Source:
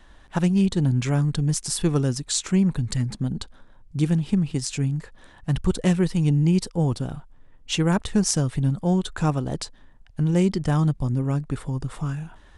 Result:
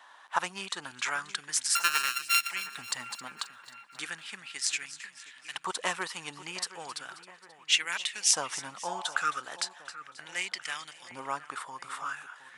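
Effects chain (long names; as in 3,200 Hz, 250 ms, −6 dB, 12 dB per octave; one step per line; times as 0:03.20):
0:01.75–0:02.50: samples sorted by size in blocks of 32 samples
0:08.91–0:09.40: healed spectral selection 550–1,100 Hz both
auto-filter high-pass saw up 0.36 Hz 920–2,500 Hz
on a send: echo with a time of its own for lows and highs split 2,400 Hz, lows 716 ms, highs 267 ms, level −15 dB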